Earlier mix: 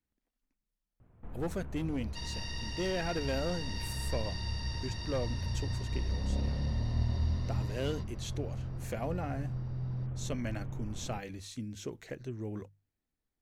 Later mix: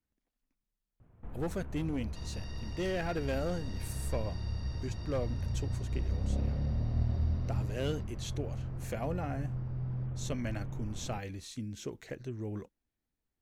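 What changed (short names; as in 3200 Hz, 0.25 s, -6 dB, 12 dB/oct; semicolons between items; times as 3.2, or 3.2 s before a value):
second sound -10.5 dB; master: remove notches 50/100/150 Hz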